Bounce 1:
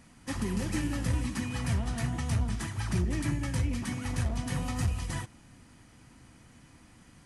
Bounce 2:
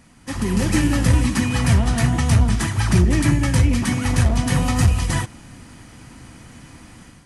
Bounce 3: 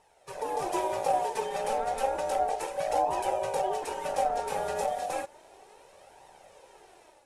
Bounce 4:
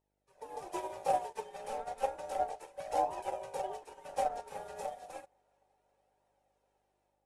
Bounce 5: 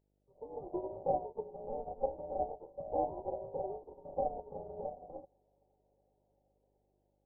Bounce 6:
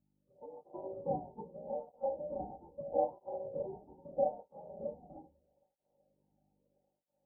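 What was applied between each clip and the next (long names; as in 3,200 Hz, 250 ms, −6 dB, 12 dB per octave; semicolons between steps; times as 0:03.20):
automatic gain control gain up to 8.5 dB; level +5 dB
dynamic equaliser 3,400 Hz, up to −4 dB, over −40 dBFS, Q 0.86; ring modulation 670 Hz; flanger 0.32 Hz, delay 1 ms, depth 4 ms, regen +39%; level −6 dB
hum with harmonics 50 Hz, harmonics 13, −59 dBFS −3 dB per octave; tape delay 381 ms, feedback 85%, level −20 dB, low-pass 4,200 Hz; expander for the loud parts 2.5 to 1, over −40 dBFS; level −1.5 dB
Gaussian smoothing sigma 15 samples; level +7 dB
on a send at −1 dB: convolution reverb RT60 0.20 s, pre-delay 3 ms; on the sum: through-zero flanger with one copy inverted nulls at 0.78 Hz, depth 2.1 ms; level −5 dB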